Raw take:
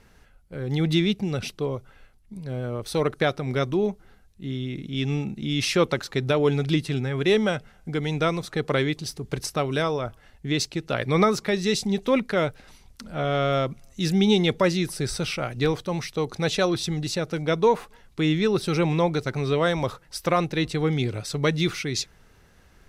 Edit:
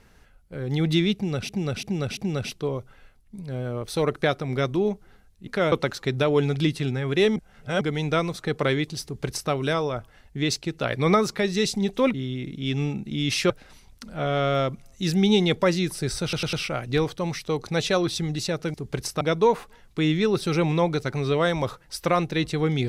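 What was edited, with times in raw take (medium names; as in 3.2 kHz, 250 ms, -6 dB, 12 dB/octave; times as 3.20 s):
1.15–1.49 s: loop, 4 plays
4.45–5.81 s: swap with 12.23–12.48 s
7.45–7.90 s: reverse
9.13–9.60 s: copy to 17.42 s
15.21 s: stutter 0.10 s, 4 plays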